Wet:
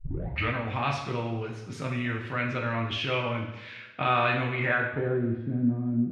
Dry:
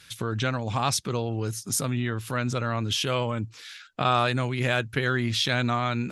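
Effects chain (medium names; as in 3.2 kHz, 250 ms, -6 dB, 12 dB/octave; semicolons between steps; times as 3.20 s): tape start-up on the opening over 0.53 s; low-pass sweep 2.4 kHz -> 260 Hz, 4.55–5.47 s; two-slope reverb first 0.75 s, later 2.2 s, DRR -1 dB; trim -6.5 dB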